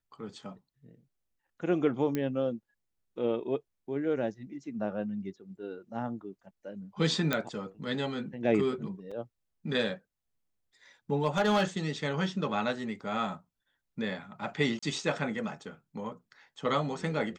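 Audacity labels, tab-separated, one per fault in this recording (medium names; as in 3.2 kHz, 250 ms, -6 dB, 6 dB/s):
2.150000	2.150000	pop -18 dBFS
7.330000	7.330000	pop -13 dBFS
9.110000	9.120000	dropout 5 ms
11.250000	11.630000	clipped -20.5 dBFS
14.790000	14.820000	dropout 35 ms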